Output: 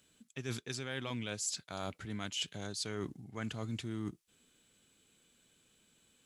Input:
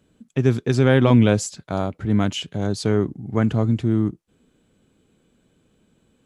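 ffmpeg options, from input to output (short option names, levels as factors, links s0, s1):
-af "tiltshelf=f=1400:g=-10,areverse,acompressor=threshold=0.0316:ratio=16,areverse,volume=0.596"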